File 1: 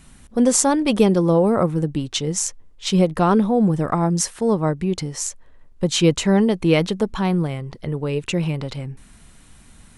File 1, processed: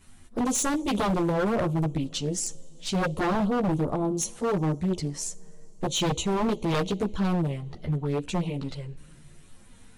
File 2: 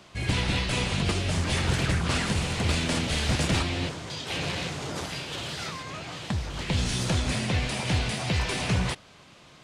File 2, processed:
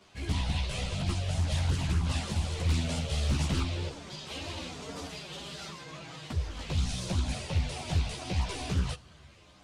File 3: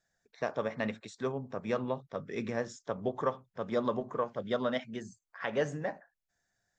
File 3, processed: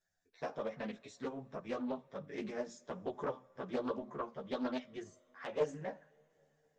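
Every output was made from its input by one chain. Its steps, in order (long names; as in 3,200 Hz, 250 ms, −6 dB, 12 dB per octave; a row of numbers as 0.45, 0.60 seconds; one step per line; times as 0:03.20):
dynamic equaliser 1,800 Hz, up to −7 dB, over −43 dBFS, Q 1.3
flanger swept by the level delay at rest 10.9 ms, full sweep at −18.5 dBFS
coupled-rooms reverb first 0.4 s, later 4.6 s, from −18 dB, DRR 17 dB
multi-voice chorus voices 4, 0.37 Hz, delay 13 ms, depth 2.1 ms
wave folding −19.5 dBFS
highs frequency-modulated by the lows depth 0.29 ms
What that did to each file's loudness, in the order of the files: −8.0, −5.0, −6.0 LU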